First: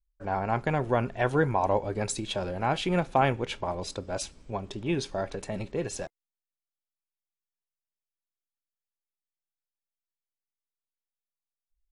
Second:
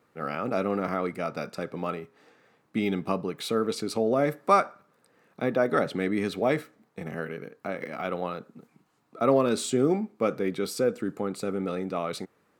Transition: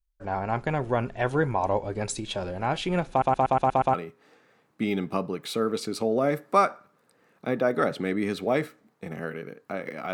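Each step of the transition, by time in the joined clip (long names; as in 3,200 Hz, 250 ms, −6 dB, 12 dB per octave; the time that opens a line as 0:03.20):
first
0:03.10: stutter in place 0.12 s, 7 plays
0:03.94: continue with second from 0:01.89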